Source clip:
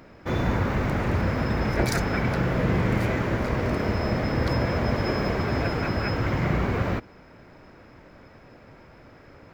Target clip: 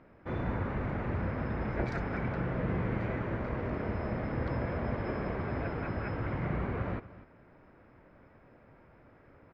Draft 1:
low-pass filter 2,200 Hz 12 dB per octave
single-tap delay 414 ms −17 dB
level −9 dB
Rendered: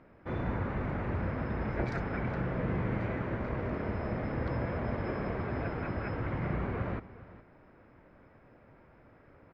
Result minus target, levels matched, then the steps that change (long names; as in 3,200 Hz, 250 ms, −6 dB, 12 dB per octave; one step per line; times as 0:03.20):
echo 168 ms late
change: single-tap delay 246 ms −17 dB